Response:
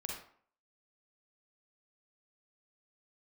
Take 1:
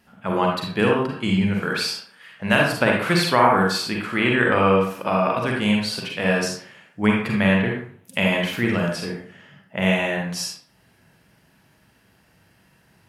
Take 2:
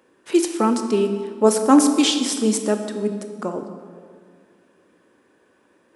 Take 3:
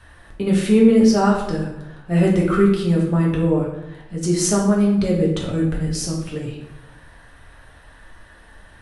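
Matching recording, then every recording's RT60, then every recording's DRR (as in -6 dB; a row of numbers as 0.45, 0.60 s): 1; 0.55, 2.0, 0.90 s; -1.5, 6.0, -3.5 dB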